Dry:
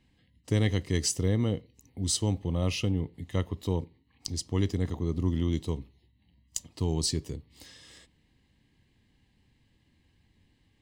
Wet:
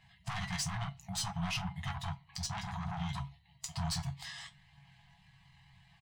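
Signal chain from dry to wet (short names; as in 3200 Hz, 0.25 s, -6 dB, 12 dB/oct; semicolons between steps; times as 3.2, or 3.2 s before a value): chorus voices 2, 0.28 Hz, delay 26 ms, depth 2.9 ms; in parallel at -2.5 dB: compressor, threshold -42 dBFS, peak gain reduction 17.5 dB; on the sum: overdrive pedal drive 19 dB, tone 4800 Hz, clips at -13 dBFS; tilt shelf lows +5 dB, about 1200 Hz; tempo 1.8×; resonator 140 Hz, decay 0.16 s, harmonics all, mix 80%; soft clip -33 dBFS, distortion -8 dB; on a send at -18 dB: reverb RT60 0.35 s, pre-delay 3 ms; on the sum: FFT band-reject 200–650 Hz; gain +4.5 dB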